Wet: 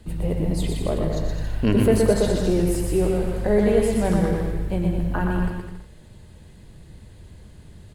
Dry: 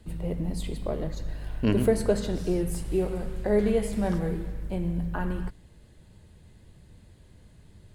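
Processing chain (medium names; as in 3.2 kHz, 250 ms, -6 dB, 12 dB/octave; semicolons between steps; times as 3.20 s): in parallel at -1 dB: peak limiter -19.5 dBFS, peak gain reduction 8 dB; on the sum: bouncing-ball echo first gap 120 ms, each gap 0.75×, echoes 5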